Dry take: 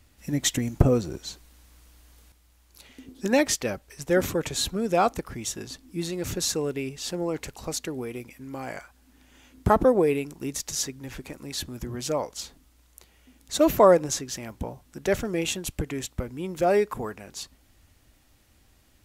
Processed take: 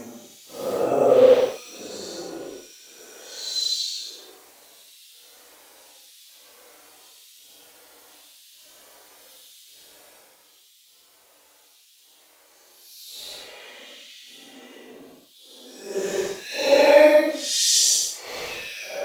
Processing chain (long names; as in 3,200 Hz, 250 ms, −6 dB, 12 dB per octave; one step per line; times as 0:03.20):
mu-law and A-law mismatch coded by mu
auto-filter high-pass square 5.5 Hz 500–3,500 Hz
extreme stretch with random phases 6.3×, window 0.10 s, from 0:00.70
level +2.5 dB